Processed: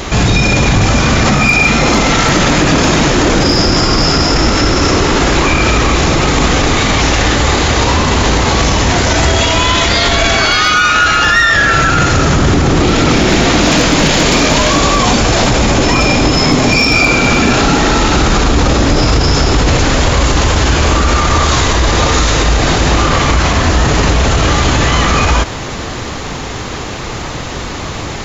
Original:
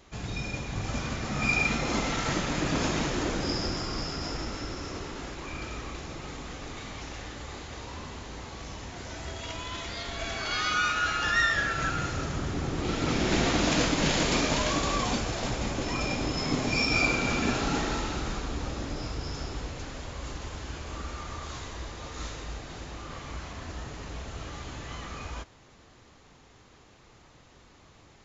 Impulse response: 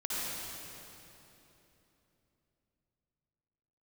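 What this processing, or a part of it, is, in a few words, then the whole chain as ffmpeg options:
loud club master: -af "acompressor=threshold=-31dB:ratio=3,asoftclip=type=hard:threshold=-24dB,alimiter=level_in=35.5dB:limit=-1dB:release=50:level=0:latency=1,volume=-1dB"

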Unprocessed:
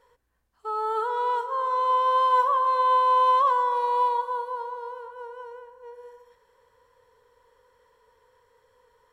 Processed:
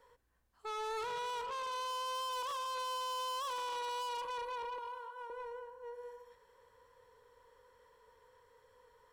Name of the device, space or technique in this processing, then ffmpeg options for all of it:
one-band saturation: -filter_complex "[0:a]asettb=1/sr,asplit=3[a][b][c];[a]atrim=end=4.784[d];[b]atrim=start=4.78:end=5.3,asetpts=PTS-STARTPTS,afade=t=in:d=0.004:c=qsin,afade=t=out:st=0.516:d=0.004:c=qsin,highpass=760[e];[c]atrim=start=5.296[f];[d][e]acrossfade=d=0.004:c1=hsin:c2=qsin[g];[g][f]acrossfade=d=0.004:c1=qsin:c2=hsin,acrossover=split=310|3600[h][i][j];[i]asoftclip=type=tanh:threshold=-37dB[k];[h][k][j]amix=inputs=3:normalize=0,volume=-2.5dB"

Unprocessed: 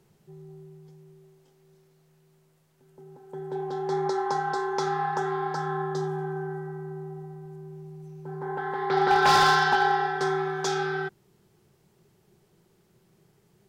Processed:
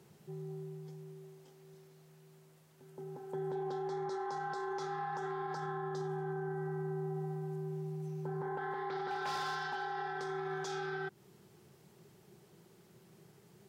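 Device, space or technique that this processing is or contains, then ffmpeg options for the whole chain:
podcast mastering chain: -af "highpass=98,acompressor=threshold=-35dB:ratio=6,alimiter=level_in=10dB:limit=-24dB:level=0:latency=1:release=36,volume=-10dB,volume=3dB" -ar 48000 -c:a libmp3lame -b:a 96k

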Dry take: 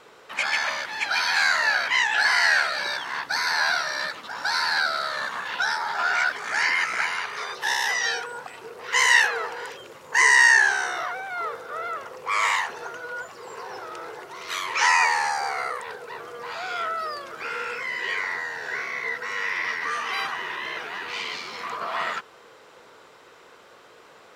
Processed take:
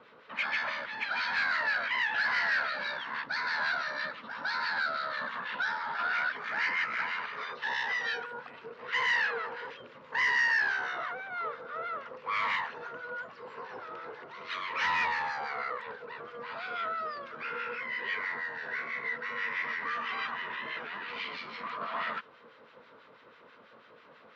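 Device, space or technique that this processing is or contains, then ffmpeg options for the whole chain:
guitar amplifier with harmonic tremolo: -filter_complex "[0:a]highshelf=f=4.3k:g=-11,acrossover=split=1300[a][b];[a]aeval=exprs='val(0)*(1-0.7/2+0.7/2*cos(2*PI*6.1*n/s))':c=same[c];[b]aeval=exprs='val(0)*(1-0.7/2-0.7/2*cos(2*PI*6.1*n/s))':c=same[d];[c][d]amix=inputs=2:normalize=0,asoftclip=type=tanh:threshold=-23dB,highpass=84,equalizer=f=95:t=q:w=4:g=-4,equalizer=f=230:t=q:w=4:g=6,equalizer=f=370:t=q:w=4:g=-8,equalizer=f=770:t=q:w=4:g=-7,lowpass=f=4.4k:w=0.5412,lowpass=f=4.4k:w=1.3066"

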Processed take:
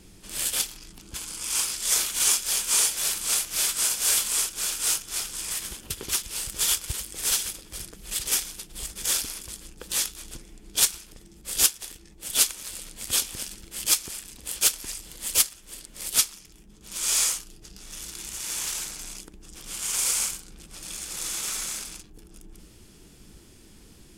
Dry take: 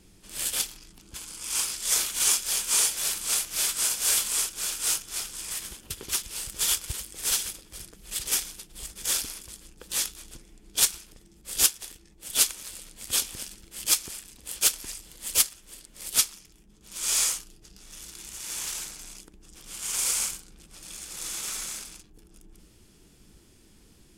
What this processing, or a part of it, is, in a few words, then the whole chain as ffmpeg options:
parallel compression: -filter_complex "[0:a]asplit=2[a][b];[b]acompressor=threshold=-37dB:ratio=6,volume=-1.5dB[c];[a][c]amix=inputs=2:normalize=0"

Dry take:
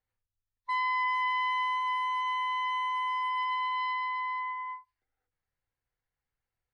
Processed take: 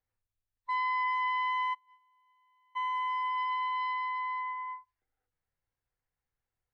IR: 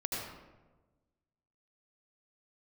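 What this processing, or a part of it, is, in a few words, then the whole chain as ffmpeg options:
behind a face mask: -filter_complex "[0:a]asplit=3[a][b][c];[a]afade=t=out:st=1.73:d=0.02[d];[b]agate=range=-37dB:threshold=-26dB:ratio=16:detection=peak,afade=t=in:st=1.73:d=0.02,afade=t=out:st=2.75:d=0.02[e];[c]afade=t=in:st=2.75:d=0.02[f];[d][e][f]amix=inputs=3:normalize=0,highshelf=f=2.8k:g=-7.5"

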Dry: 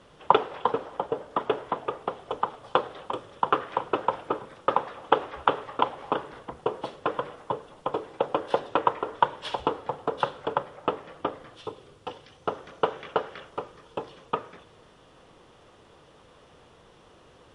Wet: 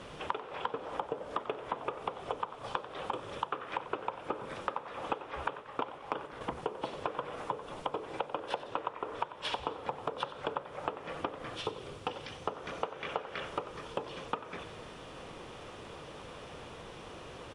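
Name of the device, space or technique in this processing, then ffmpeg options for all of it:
serial compression, peaks first: -filter_complex "[0:a]asettb=1/sr,asplit=3[a][b][c];[a]atrim=end=5.514[d];[b]atrim=start=5.51:end=6.41,asetpts=PTS-STARTPTS,afade=t=in:d=0.004:c=qsin,afade=t=out:st=0.896:d=0.004:c=qsin,agate=range=-8dB:threshold=-35dB:ratio=16:detection=peak[e];[c]atrim=start=6.406[f];[d][e]acrossfade=d=0.004:c1=hsin:c2=qsin[g];[g][f]acrossfade=d=0.004:c1=qsin:c2=hsin,acompressor=threshold=-34dB:ratio=6,acompressor=threshold=-43dB:ratio=2,equalizer=f=2.4k:t=o:w=0.24:g=5,asplit=5[h][i][j][k][l];[i]adelay=92,afreqshift=58,volume=-15dB[m];[j]adelay=184,afreqshift=116,volume=-21.7dB[n];[k]adelay=276,afreqshift=174,volume=-28.5dB[o];[l]adelay=368,afreqshift=232,volume=-35.2dB[p];[h][m][n][o][p]amix=inputs=5:normalize=0,volume=7.5dB"

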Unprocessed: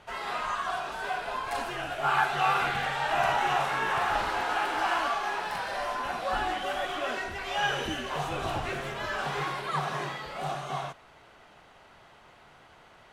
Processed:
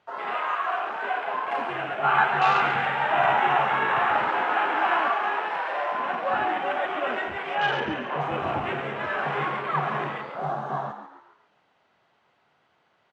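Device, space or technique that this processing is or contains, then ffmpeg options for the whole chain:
over-cleaned archive recording: -filter_complex "[0:a]highpass=120,lowpass=5.6k,afwtdn=0.0158,asettb=1/sr,asplit=3[a][b][c];[a]atrim=end=5.304[d];[b]atrim=start=5.3:end=5.76,asetpts=PTS-STARTPTS,afade=t=in:d=0.004:c=qsin,afade=t=out:st=0.456:d=0.004:c=qsin,highpass=f=210:w=0.5412,highpass=f=210:w=1.3066[e];[c]atrim=start=5.756[f];[d][e]acrossfade=d=0.004:c1=hsin:c2=qsin[g];[g][f]acrossfade=d=0.004:c1=qsin:c2=hsin,asettb=1/sr,asplit=3[h][i][j];[h]atrim=end=7.554[k];[i]atrim=start=7.55:end=8.21,asetpts=PTS-STARTPTS,afade=t=in:d=0.004:c=qsin,afade=t=out:st=0.656:d=0.004:c=qsin,highshelf=f=4.6k:g=-9[l];[j]atrim=start=8.206[m];[k][l]acrossfade=d=0.004:c1=hsin:c2=qsin[n];[n][m]acrossfade=d=0.004:c1=qsin:c2=hsin,asplit=5[o][p][q][r][s];[p]adelay=139,afreqshift=70,volume=-9.5dB[t];[q]adelay=278,afreqshift=140,volume=-17.2dB[u];[r]adelay=417,afreqshift=210,volume=-25dB[v];[s]adelay=556,afreqshift=280,volume=-32.7dB[w];[o][t][u][v][w]amix=inputs=5:normalize=0,volume=4.5dB"

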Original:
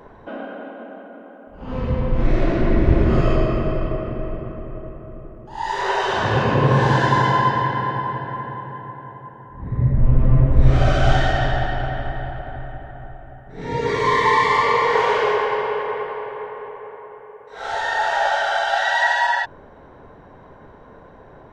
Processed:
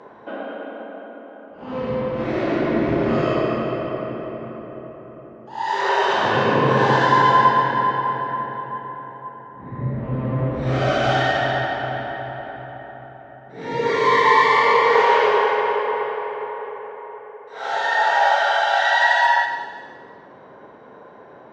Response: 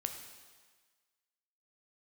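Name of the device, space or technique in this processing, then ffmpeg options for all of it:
supermarket ceiling speaker: -filter_complex "[0:a]highpass=220,lowpass=6k[a];[1:a]atrim=start_sample=2205[b];[a][b]afir=irnorm=-1:irlink=0,volume=2dB"

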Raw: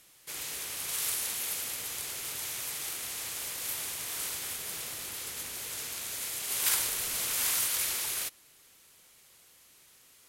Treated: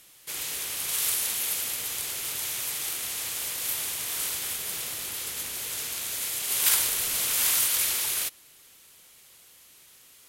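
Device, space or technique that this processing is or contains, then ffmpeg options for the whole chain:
presence and air boost: -af "equalizer=f=3.2k:t=o:w=0.77:g=2.5,highshelf=f=10k:g=4.5,volume=3dB"

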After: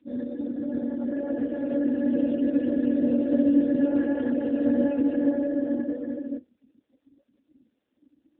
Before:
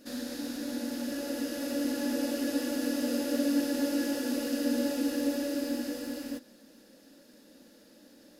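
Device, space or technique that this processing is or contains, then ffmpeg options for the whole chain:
mobile call with aggressive noise cancelling: -filter_complex "[0:a]asplit=3[a][b][c];[a]afade=t=out:st=1.89:d=0.02[d];[b]equalizer=f=160:t=o:w=0.67:g=10,equalizer=f=1k:t=o:w=0.67:g=-10,equalizer=f=6.3k:t=o:w=0.67:g=5,afade=t=in:st=1.89:d=0.02,afade=t=out:st=3.84:d=0.02[e];[c]afade=t=in:st=3.84:d=0.02[f];[d][e][f]amix=inputs=3:normalize=0,highpass=180,afftdn=nr=26:nf=-40,volume=7dB" -ar 8000 -c:a libopencore_amrnb -b:a 7950

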